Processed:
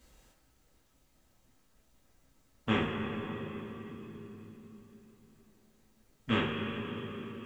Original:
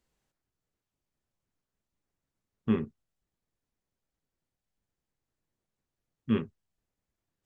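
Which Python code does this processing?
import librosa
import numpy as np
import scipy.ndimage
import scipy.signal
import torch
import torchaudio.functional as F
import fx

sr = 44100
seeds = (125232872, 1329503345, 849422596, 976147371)

y = fx.rev_double_slope(x, sr, seeds[0], early_s=0.27, late_s=3.6, knee_db=-18, drr_db=-4.5)
y = fx.spectral_comp(y, sr, ratio=2.0)
y = y * librosa.db_to_amplitude(-6.5)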